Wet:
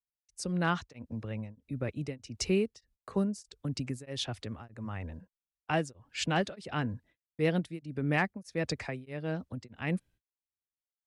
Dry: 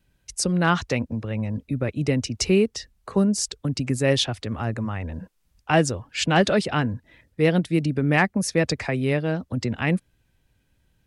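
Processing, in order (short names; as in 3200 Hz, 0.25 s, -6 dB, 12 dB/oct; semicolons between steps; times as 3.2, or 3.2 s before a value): gate -48 dBFS, range -36 dB; beating tremolo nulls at 1.6 Hz; gain -8.5 dB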